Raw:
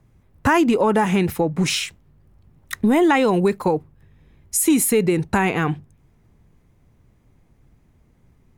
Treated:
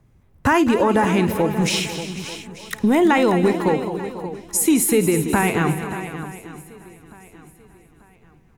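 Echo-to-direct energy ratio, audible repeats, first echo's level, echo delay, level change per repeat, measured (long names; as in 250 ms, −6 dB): −6.5 dB, 11, −17.0 dB, 54 ms, repeats not evenly spaced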